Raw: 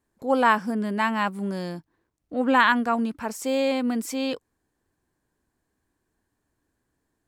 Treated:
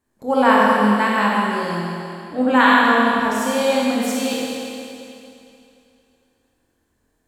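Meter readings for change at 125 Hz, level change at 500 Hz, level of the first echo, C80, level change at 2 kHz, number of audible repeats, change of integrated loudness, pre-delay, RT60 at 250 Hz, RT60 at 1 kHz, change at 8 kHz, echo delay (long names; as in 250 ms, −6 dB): +7.5 dB, +7.0 dB, no echo audible, −1.5 dB, +7.5 dB, no echo audible, +6.5 dB, 23 ms, 2.8 s, 2.7 s, +8.0 dB, no echo audible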